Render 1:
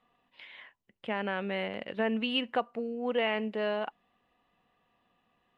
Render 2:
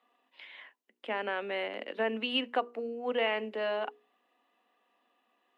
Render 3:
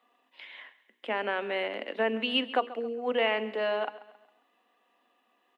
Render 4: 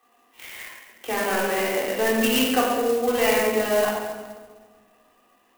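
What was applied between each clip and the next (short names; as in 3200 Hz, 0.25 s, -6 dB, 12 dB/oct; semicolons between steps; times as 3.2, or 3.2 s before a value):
steep high-pass 240 Hz 48 dB/oct; notches 60/120/180/240/300/360/420/480 Hz
feedback echo 0.135 s, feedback 42%, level -17 dB; gain +3 dB
in parallel at -11.5 dB: wrapped overs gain 24 dB; on the sum: shoebox room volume 1400 m³, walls mixed, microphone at 3.7 m; clock jitter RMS 0.043 ms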